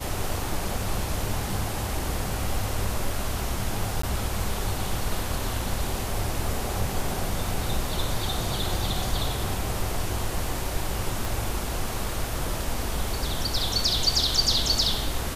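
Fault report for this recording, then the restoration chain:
4.02–4.03 s: dropout 14 ms
11.25 s: pop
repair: de-click; interpolate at 4.02 s, 14 ms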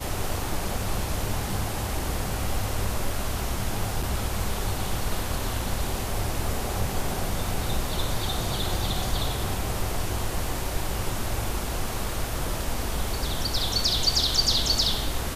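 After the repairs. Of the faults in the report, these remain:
11.25 s: pop

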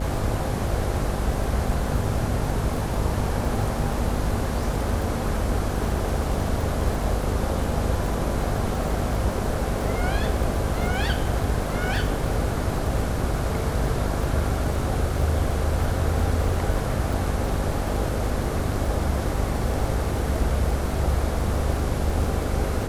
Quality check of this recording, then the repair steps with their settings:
buzz 50 Hz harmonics 13 -29 dBFS
crackle 56 per s -30 dBFS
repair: de-click; de-hum 50 Hz, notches 13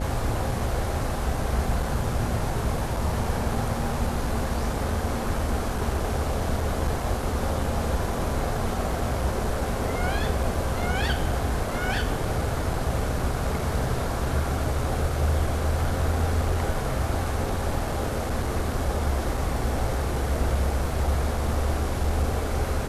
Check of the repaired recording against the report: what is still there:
nothing left

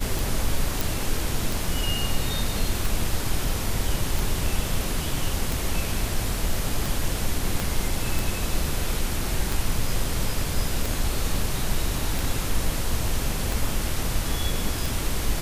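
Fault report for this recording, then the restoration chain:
tick 45 rpm
0.81 s: pop
7.60 s: pop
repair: de-click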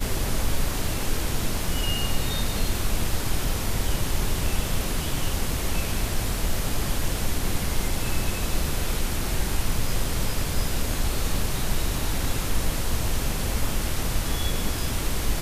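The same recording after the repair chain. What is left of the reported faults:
7.60 s: pop

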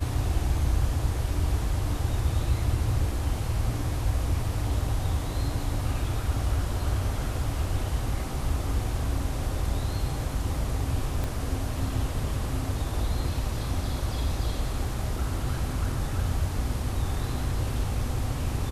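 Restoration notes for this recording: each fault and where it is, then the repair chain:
11.24 s: pop -17 dBFS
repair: de-click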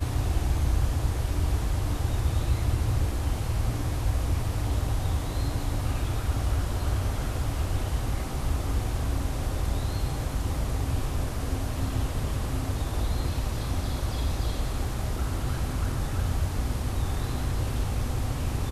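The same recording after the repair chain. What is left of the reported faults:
11.24 s: pop

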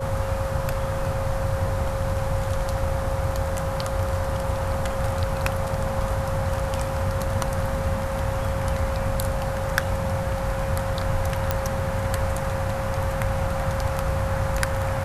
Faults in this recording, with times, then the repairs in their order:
whine 540 Hz -29 dBFS
11.51 s: pop -7 dBFS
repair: de-click; band-stop 540 Hz, Q 30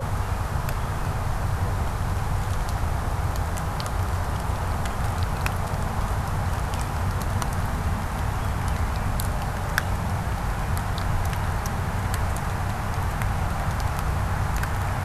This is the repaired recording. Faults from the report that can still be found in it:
nothing left

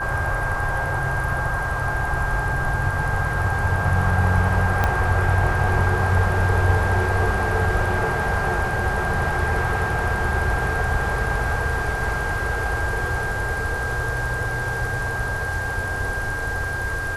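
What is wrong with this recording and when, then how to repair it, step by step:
whine 1.6 kHz -26 dBFS
4.84 s: pop -7 dBFS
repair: de-click; band-stop 1.6 kHz, Q 30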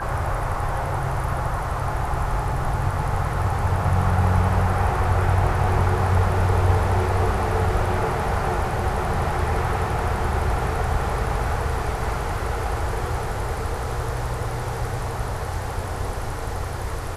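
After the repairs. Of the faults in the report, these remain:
4.84 s: pop

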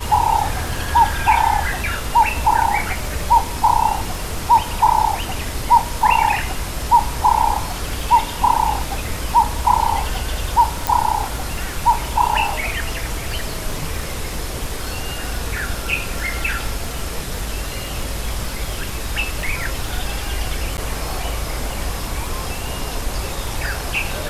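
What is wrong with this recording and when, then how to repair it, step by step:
crackle 37 per s -27 dBFS
10.87 s: pop
20.77–20.78 s: dropout 9.8 ms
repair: de-click; interpolate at 20.77 s, 9.8 ms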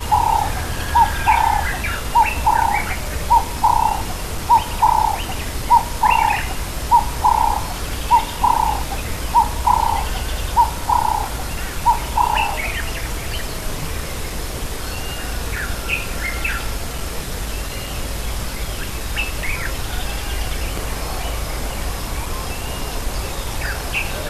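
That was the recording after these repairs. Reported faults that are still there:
nothing left

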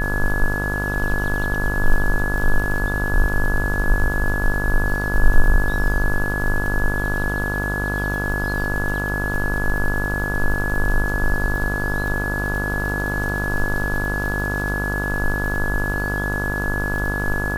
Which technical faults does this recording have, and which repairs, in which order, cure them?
buzz 50 Hz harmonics 31 -25 dBFS
crackle 52 per s -27 dBFS
whine 1.7 kHz -24 dBFS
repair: de-click; de-hum 50 Hz, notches 31; band-stop 1.7 kHz, Q 30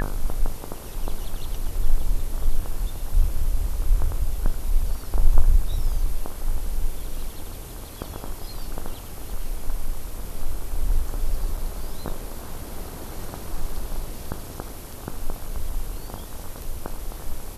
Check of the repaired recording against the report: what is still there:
nothing left

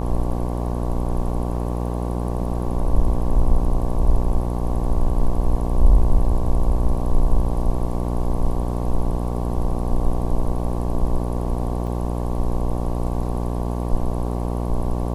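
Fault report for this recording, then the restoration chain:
buzz 60 Hz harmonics 19 -24 dBFS
11.87 s: dropout 4.5 ms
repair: de-hum 60 Hz, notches 19; interpolate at 11.87 s, 4.5 ms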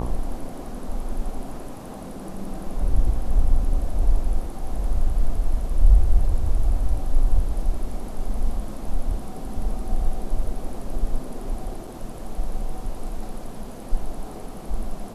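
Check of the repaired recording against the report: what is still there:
nothing left

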